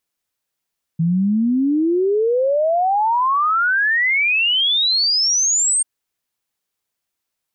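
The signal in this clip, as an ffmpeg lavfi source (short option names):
-f lavfi -i "aevalsrc='0.2*clip(min(t,4.84-t)/0.01,0,1)*sin(2*PI*160*4.84/log(8700/160)*(exp(log(8700/160)*t/4.84)-1))':d=4.84:s=44100"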